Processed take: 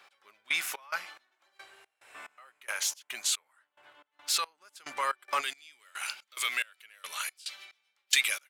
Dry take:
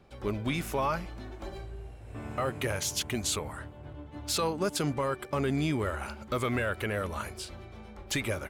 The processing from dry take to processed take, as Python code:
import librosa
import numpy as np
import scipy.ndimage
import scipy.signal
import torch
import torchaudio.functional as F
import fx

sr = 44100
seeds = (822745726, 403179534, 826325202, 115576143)

y = fx.cheby1_highpass(x, sr, hz=fx.steps((0.0, 1500.0), (5.4, 2900.0)), order=2)
y = fx.rider(y, sr, range_db=5, speed_s=0.5)
y = fx.step_gate(y, sr, bpm=179, pattern='x.....xxx..xx', floor_db=-24.0, edge_ms=4.5)
y = F.gain(torch.from_numpy(y), 7.5).numpy()